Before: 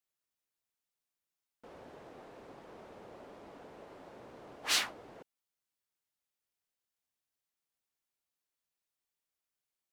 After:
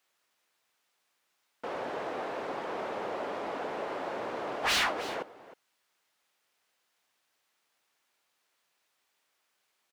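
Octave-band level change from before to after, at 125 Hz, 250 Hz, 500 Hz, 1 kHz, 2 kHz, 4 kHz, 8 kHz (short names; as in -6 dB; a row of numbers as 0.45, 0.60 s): +7.5, +12.0, +15.5, +14.0, +8.0, +2.5, -1.5 dB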